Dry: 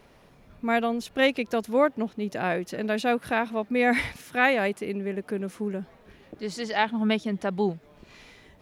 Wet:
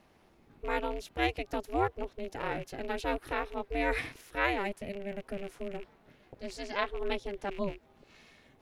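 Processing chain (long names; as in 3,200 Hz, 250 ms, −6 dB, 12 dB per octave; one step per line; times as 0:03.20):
loose part that buzzes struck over −37 dBFS, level −31 dBFS
ring modulation 200 Hz
level −5 dB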